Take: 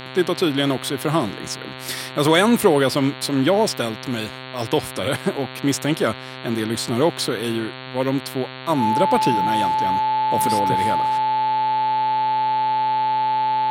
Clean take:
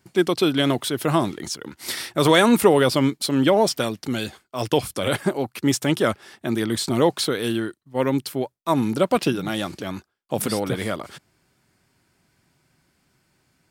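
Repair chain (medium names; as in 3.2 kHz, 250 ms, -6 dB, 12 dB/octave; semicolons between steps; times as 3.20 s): de-hum 129.9 Hz, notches 34; band-stop 870 Hz, Q 30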